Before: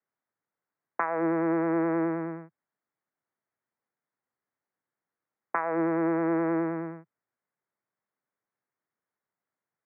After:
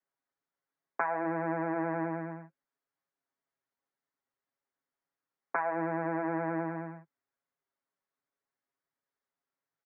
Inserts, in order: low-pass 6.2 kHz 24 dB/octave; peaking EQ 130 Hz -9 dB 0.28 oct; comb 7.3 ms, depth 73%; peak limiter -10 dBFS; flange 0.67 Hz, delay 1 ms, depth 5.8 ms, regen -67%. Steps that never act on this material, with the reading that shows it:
low-pass 6.2 kHz: input has nothing above 1.7 kHz; peak limiter -10 dBFS: peak at its input -12.5 dBFS

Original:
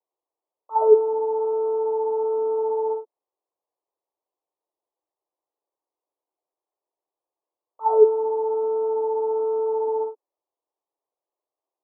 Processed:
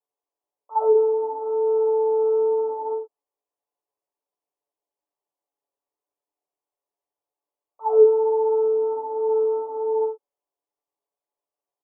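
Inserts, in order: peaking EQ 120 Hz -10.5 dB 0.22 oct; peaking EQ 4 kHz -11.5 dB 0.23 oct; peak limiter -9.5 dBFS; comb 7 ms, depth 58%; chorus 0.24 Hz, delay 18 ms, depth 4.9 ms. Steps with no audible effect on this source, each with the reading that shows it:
peaking EQ 120 Hz: input has nothing below 380 Hz; peaking EQ 4 kHz: input has nothing above 910 Hz

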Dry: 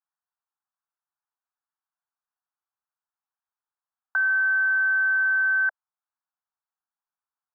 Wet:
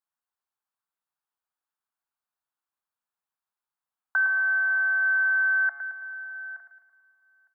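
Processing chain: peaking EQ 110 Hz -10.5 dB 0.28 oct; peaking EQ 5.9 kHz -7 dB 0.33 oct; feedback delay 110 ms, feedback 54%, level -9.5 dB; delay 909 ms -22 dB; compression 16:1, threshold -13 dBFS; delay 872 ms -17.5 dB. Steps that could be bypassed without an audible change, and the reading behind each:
peaking EQ 110 Hz: input has nothing below 810 Hz; peaking EQ 5.9 kHz: input has nothing above 1.6 kHz; compression, threshold -13 dBFS: peak at its input -15.5 dBFS

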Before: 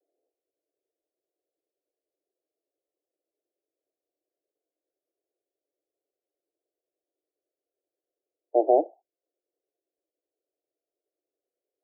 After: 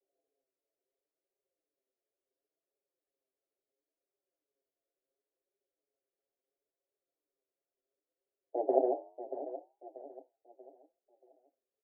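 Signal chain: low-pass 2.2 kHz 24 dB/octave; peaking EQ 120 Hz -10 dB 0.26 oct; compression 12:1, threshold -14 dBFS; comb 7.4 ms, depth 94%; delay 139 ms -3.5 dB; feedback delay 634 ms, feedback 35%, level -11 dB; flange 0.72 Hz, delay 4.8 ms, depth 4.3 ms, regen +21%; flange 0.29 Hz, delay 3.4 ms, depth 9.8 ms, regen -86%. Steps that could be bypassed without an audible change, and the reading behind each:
low-pass 2.2 kHz: input has nothing above 910 Hz; peaking EQ 120 Hz: input has nothing below 240 Hz

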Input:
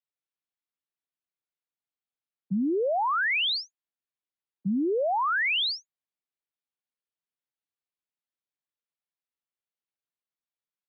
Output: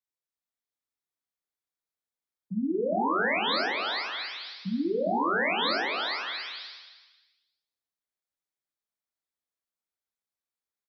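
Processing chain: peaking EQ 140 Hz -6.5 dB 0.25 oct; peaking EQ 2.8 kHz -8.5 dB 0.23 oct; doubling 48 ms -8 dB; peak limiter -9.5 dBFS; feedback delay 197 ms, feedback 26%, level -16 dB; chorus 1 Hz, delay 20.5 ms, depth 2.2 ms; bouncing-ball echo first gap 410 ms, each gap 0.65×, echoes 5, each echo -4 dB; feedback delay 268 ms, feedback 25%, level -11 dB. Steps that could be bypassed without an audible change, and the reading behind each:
peak limiter -9.5 dBFS: peak at its input -19.5 dBFS

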